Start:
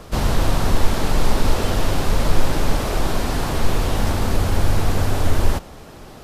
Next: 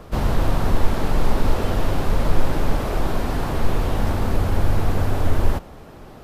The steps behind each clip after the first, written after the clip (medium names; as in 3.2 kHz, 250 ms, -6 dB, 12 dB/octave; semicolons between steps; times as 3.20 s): peaking EQ 7 kHz -8.5 dB 2.5 oct; trim -1 dB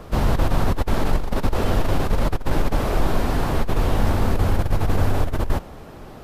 compressor with a negative ratio -16 dBFS, ratio -0.5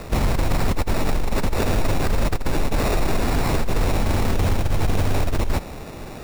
peak limiter -16 dBFS, peak gain reduction 9.5 dB; sample-and-hold 14×; trim +4.5 dB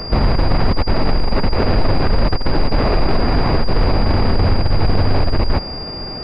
class-D stage that switches slowly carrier 4.8 kHz; trim +5.5 dB